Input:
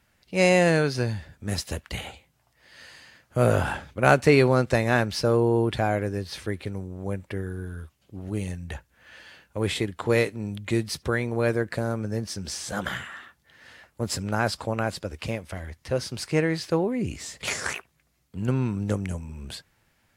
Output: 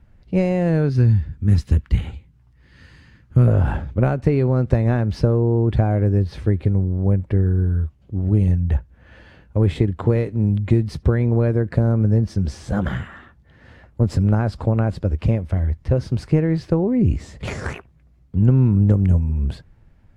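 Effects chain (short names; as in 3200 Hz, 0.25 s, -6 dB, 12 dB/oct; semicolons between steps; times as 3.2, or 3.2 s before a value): 0.89–3.48 bell 640 Hz -13.5 dB 0.93 oct; compressor 16:1, threshold -23 dBFS, peak gain reduction 12.5 dB; tilt -4.5 dB/oct; gain +2 dB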